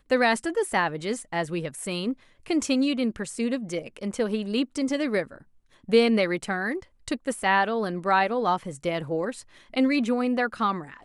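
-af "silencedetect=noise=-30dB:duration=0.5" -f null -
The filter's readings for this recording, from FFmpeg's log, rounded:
silence_start: 5.23
silence_end: 5.89 | silence_duration: 0.66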